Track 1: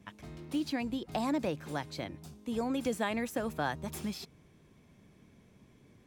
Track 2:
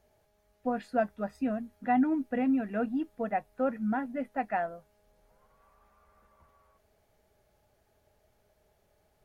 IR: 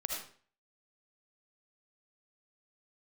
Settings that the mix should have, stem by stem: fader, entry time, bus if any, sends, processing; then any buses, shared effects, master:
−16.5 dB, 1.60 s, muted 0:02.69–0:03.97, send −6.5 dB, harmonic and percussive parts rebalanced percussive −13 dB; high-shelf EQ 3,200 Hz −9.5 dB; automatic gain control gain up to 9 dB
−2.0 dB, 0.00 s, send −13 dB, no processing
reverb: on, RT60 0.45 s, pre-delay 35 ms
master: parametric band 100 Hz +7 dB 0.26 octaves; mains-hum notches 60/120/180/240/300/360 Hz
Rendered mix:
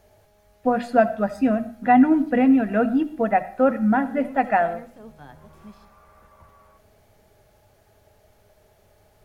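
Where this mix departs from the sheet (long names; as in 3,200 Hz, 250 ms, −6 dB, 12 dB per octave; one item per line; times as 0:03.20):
stem 1: send −6.5 dB → −12.5 dB
stem 2 −2.0 dB → +9.5 dB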